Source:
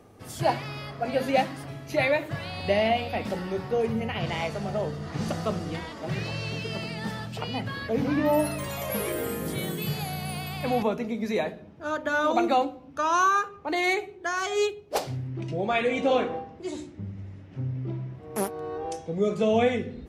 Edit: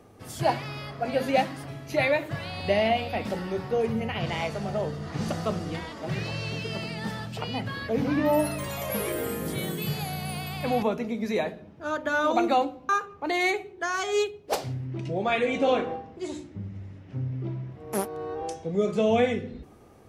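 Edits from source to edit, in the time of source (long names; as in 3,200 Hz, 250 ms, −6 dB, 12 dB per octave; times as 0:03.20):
0:12.89–0:13.32: remove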